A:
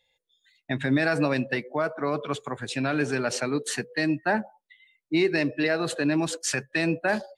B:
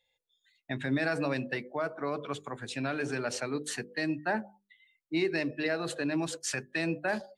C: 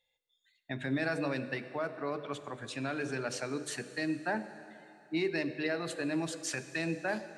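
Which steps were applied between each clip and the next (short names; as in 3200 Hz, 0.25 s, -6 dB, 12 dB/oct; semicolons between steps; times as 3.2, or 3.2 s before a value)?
notches 50/100/150/200/250/300/350/400 Hz; gain -6 dB
plate-style reverb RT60 2.9 s, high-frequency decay 0.95×, DRR 11.5 dB; gain -3 dB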